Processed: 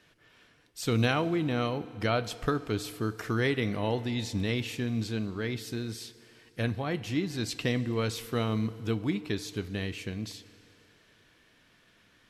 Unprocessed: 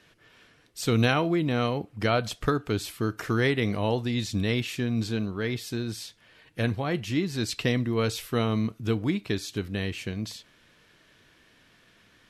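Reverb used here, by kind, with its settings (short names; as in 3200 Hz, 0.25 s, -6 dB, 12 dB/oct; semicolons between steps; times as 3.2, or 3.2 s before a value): FDN reverb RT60 3.1 s, low-frequency decay 0.7×, high-frequency decay 0.85×, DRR 15 dB; gain -3.5 dB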